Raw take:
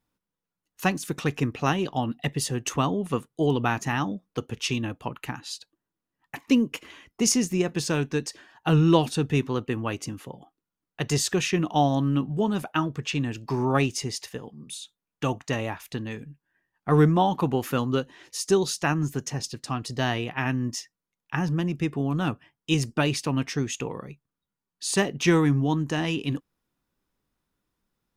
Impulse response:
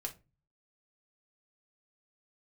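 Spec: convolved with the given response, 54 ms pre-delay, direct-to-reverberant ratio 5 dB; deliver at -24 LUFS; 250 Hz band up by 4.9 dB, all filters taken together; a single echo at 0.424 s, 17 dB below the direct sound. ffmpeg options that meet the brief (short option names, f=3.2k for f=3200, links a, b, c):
-filter_complex "[0:a]equalizer=f=250:t=o:g=6.5,aecho=1:1:424:0.141,asplit=2[a][b];[1:a]atrim=start_sample=2205,adelay=54[c];[b][c]afir=irnorm=-1:irlink=0,volume=-4dB[d];[a][d]amix=inputs=2:normalize=0,volume=-2dB"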